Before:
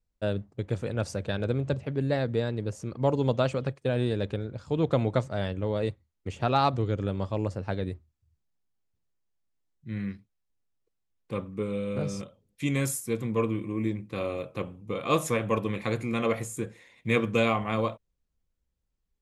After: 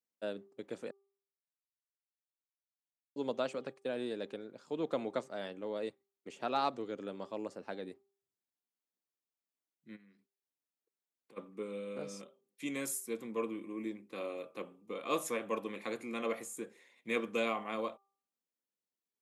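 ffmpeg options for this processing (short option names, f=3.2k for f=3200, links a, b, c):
-filter_complex "[0:a]asplit=3[a][b][c];[a]afade=t=out:st=9.95:d=0.02[d];[b]acompressor=threshold=-47dB:ratio=6:attack=3.2:release=140:knee=1:detection=peak,afade=t=in:st=9.95:d=0.02,afade=t=out:st=11.36:d=0.02[e];[c]afade=t=in:st=11.36:d=0.02[f];[d][e][f]amix=inputs=3:normalize=0,asplit=3[g][h][i];[g]atrim=end=0.91,asetpts=PTS-STARTPTS,afade=t=out:st=0.906:d=0.004:c=hsin[j];[h]atrim=start=0.91:end=3.16,asetpts=PTS-STARTPTS,volume=0[k];[i]atrim=start=3.16,asetpts=PTS-STARTPTS,afade=t=in:d=0.004:c=hsin[l];[j][k][l]concat=n=3:v=0:a=1,highpass=f=230:w=0.5412,highpass=f=230:w=1.3066,highshelf=f=9.3k:g=6,bandreject=f=394.8:t=h:w=4,bandreject=f=789.6:t=h:w=4,bandreject=f=1.1844k:t=h:w=4,volume=-8.5dB"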